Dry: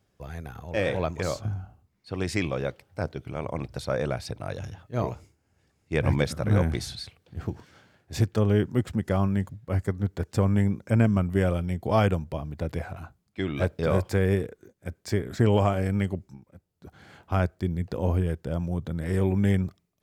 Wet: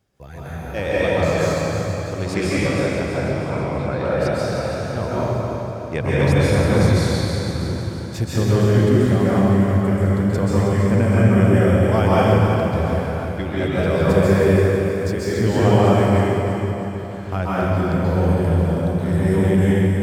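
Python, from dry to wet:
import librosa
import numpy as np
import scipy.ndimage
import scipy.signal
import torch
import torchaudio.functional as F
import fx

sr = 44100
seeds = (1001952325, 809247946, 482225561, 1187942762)

y = fx.lowpass(x, sr, hz=3100.0, slope=24, at=(3.3, 4.05))
y = fx.echo_feedback(y, sr, ms=322, feedback_pct=54, wet_db=-8)
y = fx.rev_plate(y, sr, seeds[0], rt60_s=2.6, hf_ratio=0.75, predelay_ms=120, drr_db=-8.5)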